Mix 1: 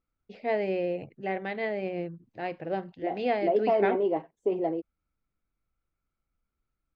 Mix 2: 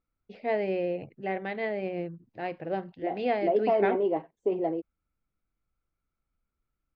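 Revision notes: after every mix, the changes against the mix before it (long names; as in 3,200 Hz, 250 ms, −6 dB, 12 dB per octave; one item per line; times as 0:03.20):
master: add high-frequency loss of the air 64 metres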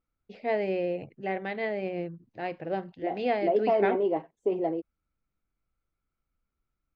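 master: remove high-frequency loss of the air 64 metres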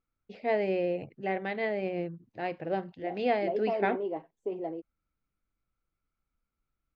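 second voice −7.0 dB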